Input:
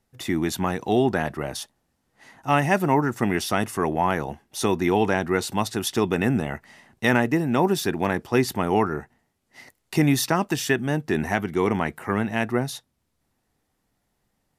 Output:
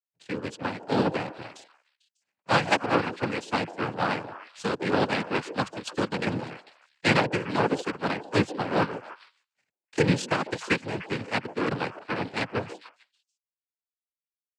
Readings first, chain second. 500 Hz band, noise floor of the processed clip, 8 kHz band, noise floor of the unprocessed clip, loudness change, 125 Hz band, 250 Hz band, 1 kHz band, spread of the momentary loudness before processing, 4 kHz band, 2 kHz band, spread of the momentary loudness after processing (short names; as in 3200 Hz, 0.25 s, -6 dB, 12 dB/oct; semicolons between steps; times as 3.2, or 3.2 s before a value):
-4.5 dB, under -85 dBFS, -10.5 dB, -74 dBFS, -4.0 dB, -5.5 dB, -6.5 dB, -3.5 dB, 8 LU, -1.5 dB, -2.0 dB, 13 LU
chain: power-law curve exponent 2; delay with a stepping band-pass 0.149 s, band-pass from 480 Hz, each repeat 1.4 oct, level -10.5 dB; noise vocoder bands 8; gain +5 dB